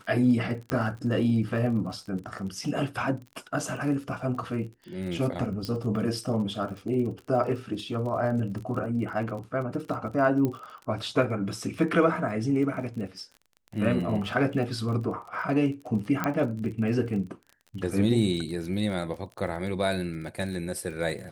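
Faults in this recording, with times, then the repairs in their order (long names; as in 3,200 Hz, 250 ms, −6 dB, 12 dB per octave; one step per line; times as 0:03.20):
surface crackle 35 per second −36 dBFS
0:00.70: click −14 dBFS
0:05.65: click −20 dBFS
0:10.45: click −16 dBFS
0:16.24: click −12 dBFS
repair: click removal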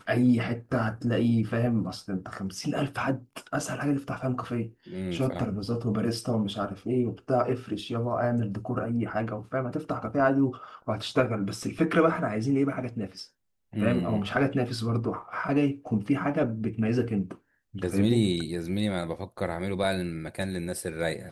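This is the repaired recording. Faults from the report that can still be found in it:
none of them is left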